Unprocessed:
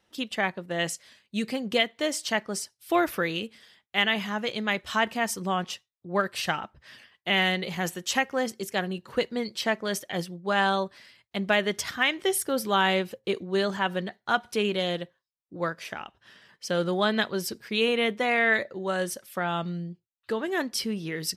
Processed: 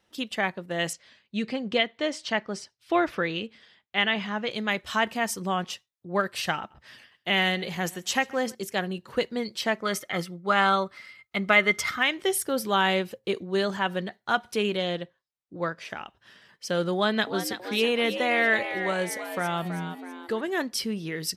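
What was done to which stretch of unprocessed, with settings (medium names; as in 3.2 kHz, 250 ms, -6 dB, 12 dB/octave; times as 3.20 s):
0.93–4.51 s: low-pass 4.5 kHz
6.57–8.55 s: feedback delay 133 ms, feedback 40%, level -23 dB
9.82–11.99 s: small resonant body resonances 1.3/2.1 kHz, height 17 dB, ringing for 40 ms
14.77–15.90 s: distance through air 51 m
16.94–20.41 s: frequency-shifting echo 326 ms, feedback 45%, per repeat +90 Hz, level -9.5 dB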